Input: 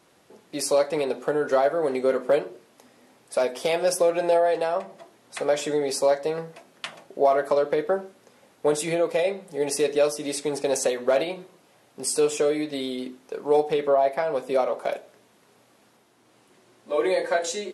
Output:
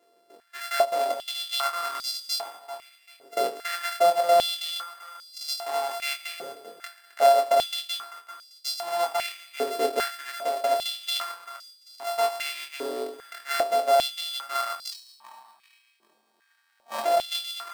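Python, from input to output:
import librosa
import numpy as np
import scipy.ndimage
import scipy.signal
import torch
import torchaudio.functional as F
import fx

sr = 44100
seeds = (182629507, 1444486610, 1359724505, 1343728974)

y = np.r_[np.sort(x[:len(x) // 64 * 64].reshape(-1, 64), axis=1).ravel(), x[len(x) // 64 * 64:]]
y = fx.echo_feedback(y, sr, ms=391, feedback_pct=44, wet_db=-15.5)
y = fx.ring_mod(y, sr, carrier_hz=470.0, at=(14.91, 17.04), fade=0.02)
y = fx.doubler(y, sr, ms=23.0, db=-5.5)
y = fx.filter_held_highpass(y, sr, hz=2.5, low_hz=420.0, high_hz=4700.0)
y = y * librosa.db_to_amplitude(-8.0)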